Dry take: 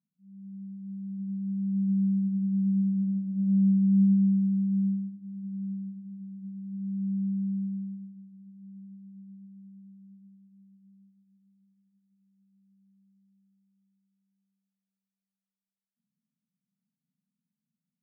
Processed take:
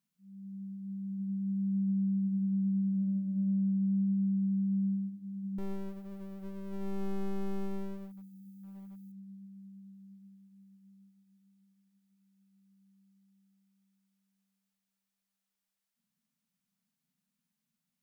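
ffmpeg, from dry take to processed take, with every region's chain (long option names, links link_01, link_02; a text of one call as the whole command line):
ffmpeg -i in.wav -filter_complex "[0:a]asettb=1/sr,asplit=3[link_01][link_02][link_03];[link_01]atrim=end=5.584[link_04];[link_02]atrim=start=5.58:end=9.12,asetpts=PTS-STARTPTS,afade=type=in:duration=0.004:curve=qsin,afade=type=out:start_time=3.536:duration=0.004:curve=qsin,aeval=exprs='clip(val(0),-1,0.00668)':channel_layout=same,aemphasis=mode=production:type=50fm[link_05];[link_03]atrim=start=9.116[link_06];[link_04][link_05]acrossfade=duration=0.004:curve1=hsin:curve2=qsin[link_07];[link_07][link_06]acrossfade=duration=0.004:curve1=qsin:curve2=hsin,equalizer=frequency=160:width=0.45:gain=-10,acompressor=threshold=-36dB:ratio=6,volume=8dB" out.wav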